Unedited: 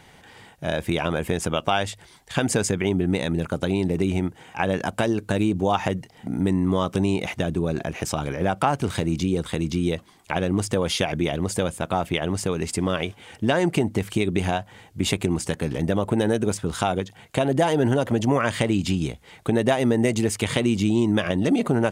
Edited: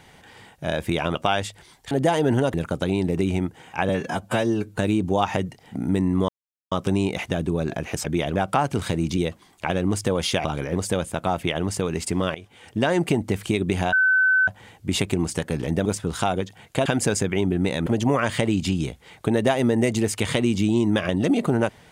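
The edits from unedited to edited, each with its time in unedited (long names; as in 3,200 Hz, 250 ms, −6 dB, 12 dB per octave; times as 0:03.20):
0:01.15–0:01.58: remove
0:02.34–0:03.35: swap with 0:17.45–0:18.08
0:04.70–0:05.29: time-stretch 1.5×
0:06.80: splice in silence 0.43 s
0:08.13–0:08.44: swap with 0:11.11–0:11.42
0:09.26–0:09.84: remove
0:13.01–0:13.67: fade in equal-power, from −16.5 dB
0:14.59: insert tone 1,520 Hz −15 dBFS 0.55 s
0:15.97–0:16.45: remove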